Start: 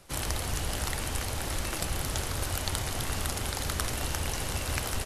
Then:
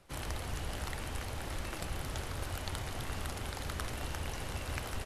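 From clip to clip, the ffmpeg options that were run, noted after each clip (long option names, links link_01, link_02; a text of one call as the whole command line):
ffmpeg -i in.wav -af "bass=frequency=250:gain=0,treble=frequency=4000:gain=-7,volume=-6dB" out.wav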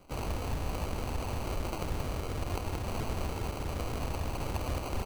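ffmpeg -i in.wav -filter_complex "[0:a]asplit=2[link_01][link_02];[link_02]alimiter=level_in=3dB:limit=-24dB:level=0:latency=1:release=154,volume=-3dB,volume=-2dB[link_03];[link_01][link_03]amix=inputs=2:normalize=0,acrusher=samples=25:mix=1:aa=0.000001" out.wav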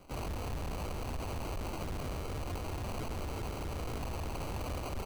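ffmpeg -i in.wav -af "asoftclip=type=tanh:threshold=-34.5dB,volume=1dB" out.wav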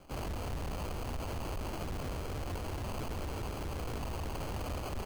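ffmpeg -i in.wav -af "acrusher=samples=12:mix=1:aa=0.000001" out.wav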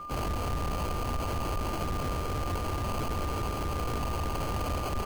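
ffmpeg -i in.wav -af "aeval=exprs='val(0)+0.00631*sin(2*PI*1200*n/s)':channel_layout=same,volume=6dB" out.wav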